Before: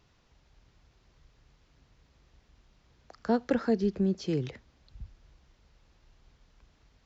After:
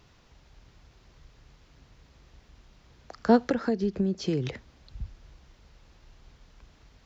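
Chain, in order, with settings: 3.41–4.46 s: compression 4:1, threshold -31 dBFS, peak gain reduction 9 dB; trim +7 dB

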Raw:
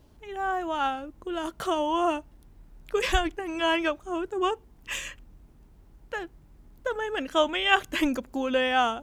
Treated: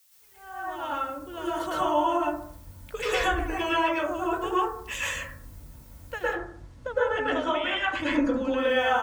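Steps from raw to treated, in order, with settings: fade-in on the opening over 2.41 s; comb of notches 400 Hz; added noise blue -62 dBFS; bands offset in time highs, lows 60 ms, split 260 Hz; compression 10:1, threshold -29 dBFS, peak gain reduction 12.5 dB; 6.22–8.58 s: distance through air 91 m; reverberation RT60 0.55 s, pre-delay 103 ms, DRR -8 dB

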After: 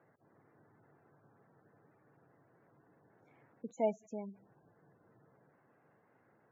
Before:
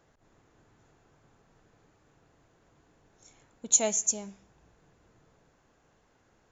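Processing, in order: spectral gate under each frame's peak -20 dB strong; Chebyshev band-pass 120–2100 Hz, order 3; trim -1.5 dB

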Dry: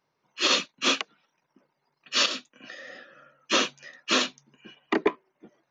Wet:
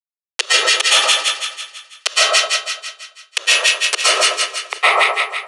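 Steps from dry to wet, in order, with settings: local Wiener filter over 41 samples; band-stop 4.6 kHz, Q 19; bit crusher 5-bit; compression 4:1, threshold -27 dBFS, peak gain reduction 9 dB; inverted gate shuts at -21 dBFS, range -31 dB; two-band feedback delay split 1.2 kHz, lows 118 ms, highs 171 ms, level -5 dB; speed mistake 24 fps film run at 25 fps; reverberation RT60 0.35 s, pre-delay 100 ms, DRR -9.5 dB; resampled via 22.05 kHz; steep high-pass 410 Hz 48 dB/octave; loudness maximiser +26.5 dB; trim -1 dB

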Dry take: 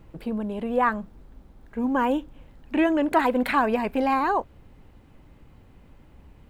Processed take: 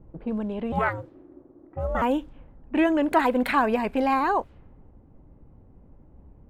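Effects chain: level-controlled noise filter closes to 610 Hz, open at -22.5 dBFS; 0.72–2.02 s: ring modulator 320 Hz

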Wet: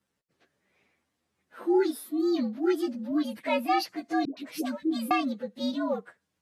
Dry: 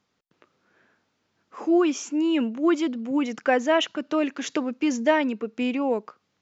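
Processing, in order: frequency axis rescaled in octaves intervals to 118%; 4.25–5.11 s: phase dispersion highs, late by 120 ms, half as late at 530 Hz; trim -2.5 dB

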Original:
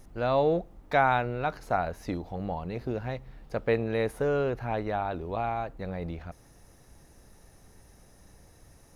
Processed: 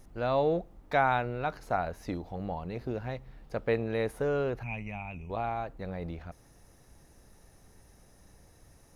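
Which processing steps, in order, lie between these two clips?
4.63–5.30 s: FFT filter 210 Hz 0 dB, 330 Hz -16 dB, 530 Hz -15 dB, 930 Hz -8 dB, 1.6 kHz -17 dB, 2.5 kHz +14 dB, 3.9 kHz -24 dB, 5.9 kHz +2 dB, 13 kHz -4 dB; trim -2.5 dB

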